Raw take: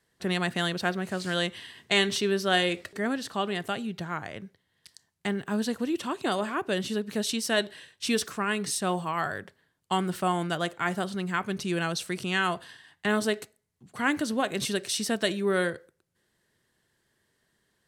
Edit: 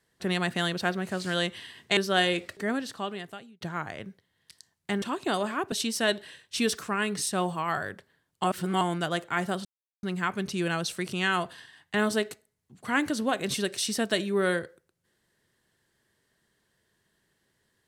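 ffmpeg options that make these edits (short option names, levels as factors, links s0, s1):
-filter_complex "[0:a]asplit=8[s0][s1][s2][s3][s4][s5][s6][s7];[s0]atrim=end=1.972[s8];[s1]atrim=start=2.328:end=3.97,asetpts=PTS-STARTPTS,afade=t=out:st=0.722:d=0.92[s9];[s2]atrim=start=3.97:end=5.382,asetpts=PTS-STARTPTS,afade=t=in:d=0.004:c=hsin[s10];[s3]atrim=start=5.998:end=6.702[s11];[s4]atrim=start=7.208:end=9.932[s12];[s5]atrim=start=9.928:end=10.302,asetpts=PTS-STARTPTS,areverse[s13];[s6]atrim=start=10.298:end=11.14,asetpts=PTS-STARTPTS,afade=t=out:st=0.838:d=0.004:c=hsin,apad=pad_dur=0.38[s14];[s7]atrim=start=11.14,asetpts=PTS-STARTPTS,afade=t=in:d=0.004:c=hsin[s15];[s9][s10]concat=n=2:v=0:a=1[s16];[s8][s16]acrossfade=d=0.004:c1=hsin:c2=hsin[s17];[s17][s11]acrossfade=d=0.004:c1=hsin:c2=hsin[s18];[s18][s12]acrossfade=d=0.004:c1=hsin:c2=hsin[s19];[s19][s13]acrossfade=d=0.004:c1=hsin:c2=hsin[s20];[s14][s15]concat=n=2:v=0:a=1[s21];[s20][s21]acrossfade=d=0.004:c1=hsin:c2=hsin"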